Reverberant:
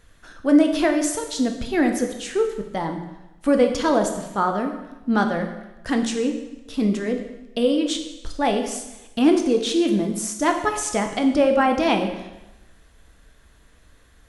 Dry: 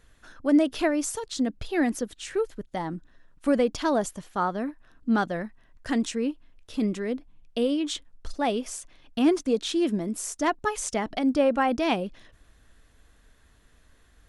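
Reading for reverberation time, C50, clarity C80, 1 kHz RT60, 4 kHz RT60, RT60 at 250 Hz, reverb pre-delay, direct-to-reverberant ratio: 1.0 s, 7.5 dB, 9.5 dB, 1.0 s, 0.95 s, 0.95 s, 5 ms, 4.0 dB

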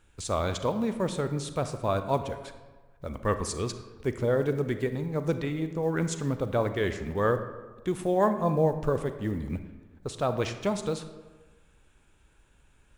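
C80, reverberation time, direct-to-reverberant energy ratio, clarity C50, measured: 11.5 dB, 1.3 s, 9.0 dB, 10.0 dB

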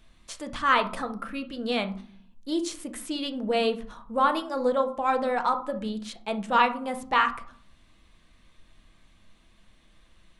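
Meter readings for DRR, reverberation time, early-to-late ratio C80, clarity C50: 6.0 dB, 0.50 s, 18.5 dB, 13.0 dB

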